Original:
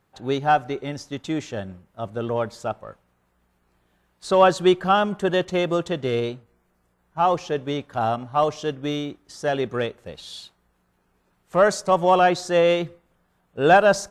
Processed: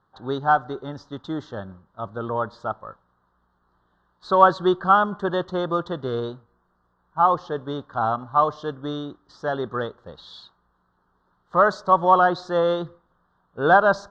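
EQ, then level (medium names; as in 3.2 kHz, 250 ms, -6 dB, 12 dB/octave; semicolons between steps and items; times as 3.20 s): Butterworth band-stop 2.4 kHz, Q 0.83; distance through air 200 m; high-order bell 2 kHz +11.5 dB 2.4 oct; -2.5 dB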